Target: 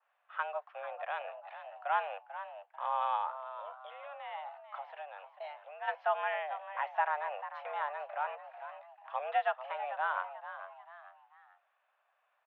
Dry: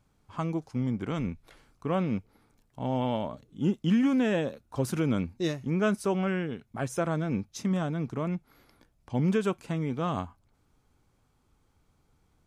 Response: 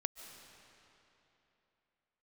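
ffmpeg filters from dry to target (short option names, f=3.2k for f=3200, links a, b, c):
-filter_complex "[0:a]asplit=3[a][b][c];[a]afade=t=out:st=3.29:d=0.02[d];[b]acompressor=threshold=-37dB:ratio=5,afade=t=in:st=3.29:d=0.02,afade=t=out:st=5.87:d=0.02[e];[c]afade=t=in:st=5.87:d=0.02[f];[d][e][f]amix=inputs=3:normalize=0,asplit=4[g][h][i][j];[h]adelay=442,afreqshift=110,volume=-13dB[k];[i]adelay=884,afreqshift=220,volume=-22.4dB[l];[j]adelay=1326,afreqshift=330,volume=-31.7dB[m];[g][k][l][m]amix=inputs=4:normalize=0,highpass=f=390:t=q:w=0.5412,highpass=f=390:t=q:w=1.307,lowpass=f=2.8k:t=q:w=0.5176,lowpass=f=2.8k:t=q:w=0.7071,lowpass=f=2.8k:t=q:w=1.932,afreqshift=290,adynamicequalizer=threshold=0.00316:dfrequency=2300:dqfactor=0.7:tfrequency=2300:tqfactor=0.7:attack=5:release=100:ratio=0.375:range=3:mode=cutabove:tftype=highshelf"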